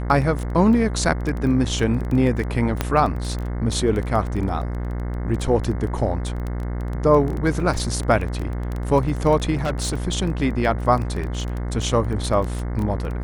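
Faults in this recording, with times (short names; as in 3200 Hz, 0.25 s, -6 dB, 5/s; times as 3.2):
buzz 60 Hz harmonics 36 -26 dBFS
crackle 12/s -24 dBFS
2.81 pop -6 dBFS
9.53–9.95 clipped -19 dBFS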